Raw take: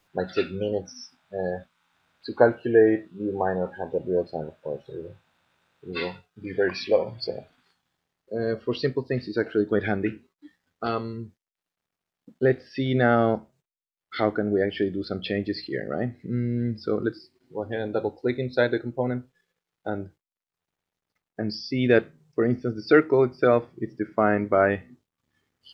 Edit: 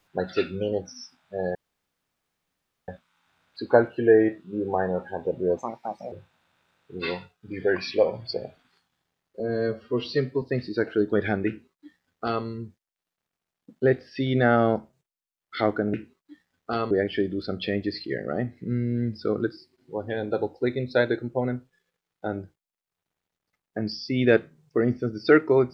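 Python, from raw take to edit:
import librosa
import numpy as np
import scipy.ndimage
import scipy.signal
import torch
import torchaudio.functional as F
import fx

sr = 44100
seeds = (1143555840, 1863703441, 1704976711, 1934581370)

y = fx.edit(x, sr, fx.insert_room_tone(at_s=1.55, length_s=1.33),
    fx.speed_span(start_s=4.24, length_s=0.81, speed=1.48),
    fx.stretch_span(start_s=8.33, length_s=0.68, factor=1.5),
    fx.duplicate(start_s=10.07, length_s=0.97, to_s=14.53), tone=tone)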